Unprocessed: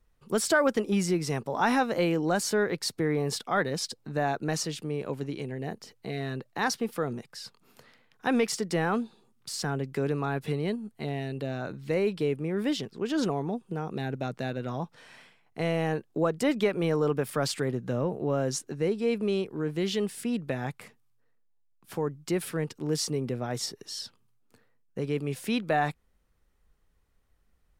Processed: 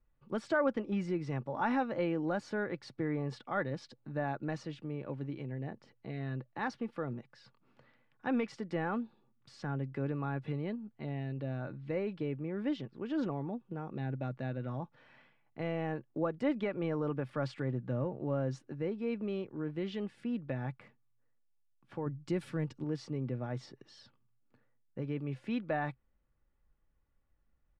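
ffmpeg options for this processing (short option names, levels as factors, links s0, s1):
-filter_complex "[0:a]asettb=1/sr,asplit=3[s0][s1][s2];[s0]atrim=end=22.064[s3];[s1]atrim=start=22.06:end=22.84,asetpts=PTS-STARTPTS,afade=t=in:d=0.004:c=qsin,afade=t=out:st=0.776:d=0.004:c=qsin,bass=f=250:g=6,treble=f=4000:g=12[s4];[s2]atrim=start=22.836[s5];[s3][s4]acrossfade=d=0.004:c1=hsin:c2=qsin[s6];[s6][s5]acrossfade=d=0.004:c1=qsin:c2=hsin,lowpass=2400,equalizer=f=130:w=3.4:g=10.5,aecho=1:1:3.5:0.36,volume=0.398"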